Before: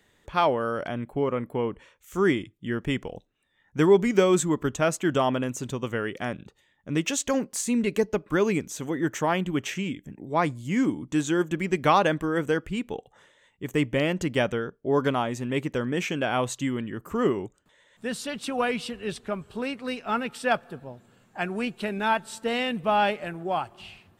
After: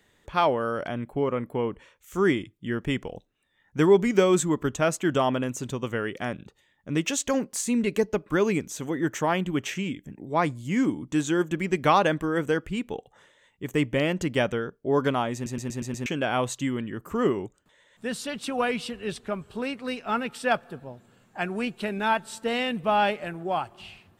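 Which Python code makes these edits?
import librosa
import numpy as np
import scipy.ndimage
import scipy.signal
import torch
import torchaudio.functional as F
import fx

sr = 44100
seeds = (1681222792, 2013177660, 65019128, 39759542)

y = fx.edit(x, sr, fx.stutter_over(start_s=15.34, slice_s=0.12, count=6), tone=tone)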